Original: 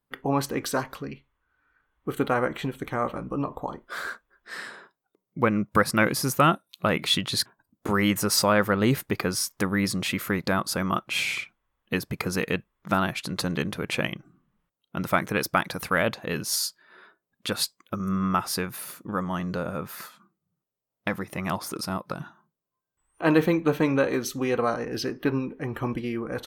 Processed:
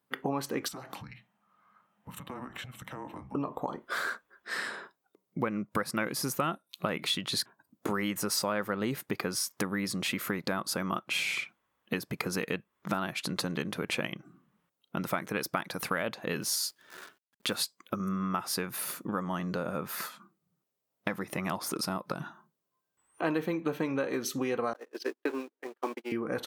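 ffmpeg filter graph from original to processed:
-filter_complex "[0:a]asettb=1/sr,asplit=3[a][b][c];[a]atrim=end=0.684[d];[b]atrim=start=0.68:end=3.35,asetpts=PTS-STARTPTS,afade=t=in:d=0.004:c=qsin,afade=t=out:st=2.666:d=0.004:c=qsin,highpass=49,acompressor=threshold=-39dB:ratio=10:attack=3.2:release=140:knee=1:detection=peak,afreqshift=-260[e];[c]atrim=start=3.346[f];[d][e]acrossfade=d=0.004:c1=hsin:c2=qsin[g];[g][f]acrossfade=d=0.004:c1=qsin:c2=hsin,asettb=1/sr,asplit=3[h][i][j];[h]atrim=end=16.424[k];[i]atrim=start=16.42:end=17.56,asetpts=PTS-STARTPTS,afade=t=in:d=0.004:c=qsin,afade=t=out:st=1.136:d=0.004:c=qsin,highpass=62,acrusher=bits=9:dc=4:mix=0:aa=0.000001[l];[j]atrim=start=17.556[m];[k][l]acrossfade=d=0.004:c1=hsin:c2=qsin[n];[n][m]acrossfade=d=0.004:c1=qsin:c2=hsin,asettb=1/sr,asplit=3[o][p][q];[o]atrim=end=24.734[r];[p]atrim=start=24.73:end=26.12,asetpts=PTS-STARTPTS,afade=t=in:d=0.004:c=qsin,afade=t=out:st=1.386:d=0.004:c=qsin,aeval=exprs='val(0)+0.5*0.0158*sgn(val(0))':c=same,agate=range=-53dB:threshold=-27dB:ratio=16:release=100:detection=peak,highpass=f=310:w=0.5412,highpass=f=310:w=1.3066[s];[q]atrim=start=26.116[t];[r][s]acrossfade=d=0.004:c1=hsin:c2=qsin[u];[u][t]acrossfade=d=0.004:c1=qsin:c2=hsin,acompressor=threshold=-33dB:ratio=4,highpass=150,volume=3.5dB"

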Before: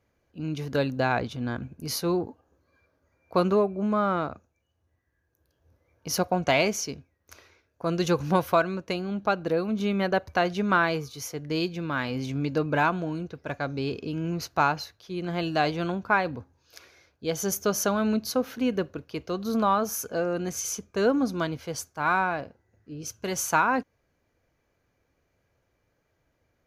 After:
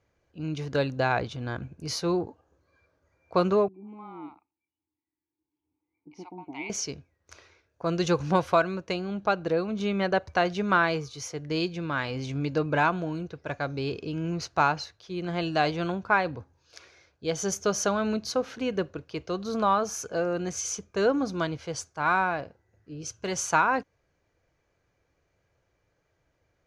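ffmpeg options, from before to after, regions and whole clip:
-filter_complex "[0:a]asettb=1/sr,asplit=3[a][b][c];[a]atrim=end=3.684[d];[b]atrim=start=3.68:end=6.7,asetpts=PTS-STARTPTS,afade=t=in:d=0.004:c=qsin,afade=t=out:st=3.016:d=0.004:c=qsin,asplit=3[e][f][g];[e]bandpass=f=300:t=q:w=8,volume=0dB[h];[f]bandpass=f=870:t=q:w=8,volume=-6dB[i];[g]bandpass=f=2.24k:t=q:w=8,volume=-9dB[j];[h][i][j]amix=inputs=3:normalize=0,acrossover=split=670[k][l];[l]adelay=60[m];[k][m]amix=inputs=2:normalize=0,atrim=end_sample=133182[n];[c]atrim=start=6.696[o];[d][n]acrossfade=d=0.004:c1=hsin:c2=qsin[p];[p][o]acrossfade=d=0.004:c1=qsin:c2=hsin,lowpass=f=8.3k:w=0.5412,lowpass=f=8.3k:w=1.3066,equalizer=f=240:w=4.9:g=-8"

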